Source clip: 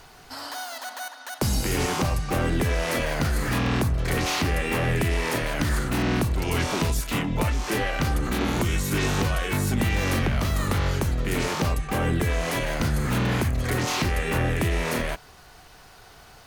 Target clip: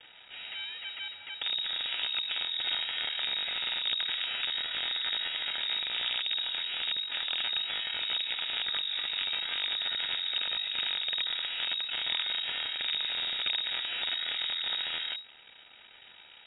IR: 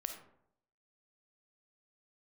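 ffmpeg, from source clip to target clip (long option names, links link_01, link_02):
-filter_complex "[0:a]highpass=frequency=40:poles=1,equalizer=frequency=260:width=2.9:gain=-10,acrossover=split=2100[link_01][link_02];[link_02]acompressor=threshold=-45dB:ratio=12[link_03];[link_01][link_03]amix=inputs=2:normalize=0,alimiter=limit=-23dB:level=0:latency=1:release=139,acrusher=bits=5:dc=4:mix=0:aa=0.000001,lowpass=frequency=3200:width_type=q:width=0.5098,lowpass=frequency=3200:width_type=q:width=0.6013,lowpass=frequency=3200:width_type=q:width=0.9,lowpass=frequency=3200:width_type=q:width=2.563,afreqshift=-3800,asuperstop=centerf=1100:order=12:qfactor=5.8"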